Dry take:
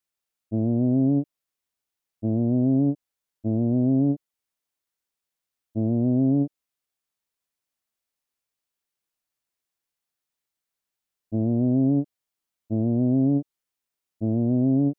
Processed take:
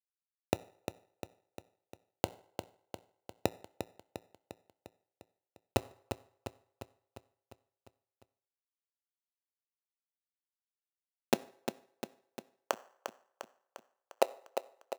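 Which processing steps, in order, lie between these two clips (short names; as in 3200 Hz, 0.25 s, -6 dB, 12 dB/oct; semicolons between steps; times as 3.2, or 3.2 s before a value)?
12.02–13.09 half-waves squared off; Bessel low-pass 830 Hz, order 2; spectral gate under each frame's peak -15 dB weak; gate with hold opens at -42 dBFS; in parallel at -2 dB: negative-ratio compressor -43 dBFS, ratio -0.5; on the sum: flipped gate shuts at -29 dBFS, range -38 dB; bit-crush 6-bit; high-pass sweep 86 Hz -> 550 Hz, 10.49–12.31; feedback echo 0.351 s, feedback 59%, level -8.5 dB; on a send at -15 dB: reverb RT60 0.65 s, pre-delay 4 ms; on the sum: gain +15.5 dB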